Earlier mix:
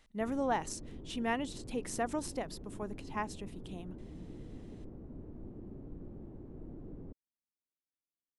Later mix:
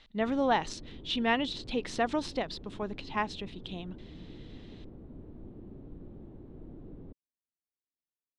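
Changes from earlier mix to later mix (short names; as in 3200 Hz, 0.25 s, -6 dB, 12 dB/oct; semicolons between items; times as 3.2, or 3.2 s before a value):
speech +5.0 dB; master: add synth low-pass 3800 Hz, resonance Q 3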